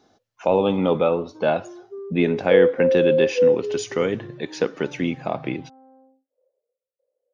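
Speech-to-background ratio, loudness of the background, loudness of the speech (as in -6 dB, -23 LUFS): -3.0 dB, -20.5 LUFS, -23.5 LUFS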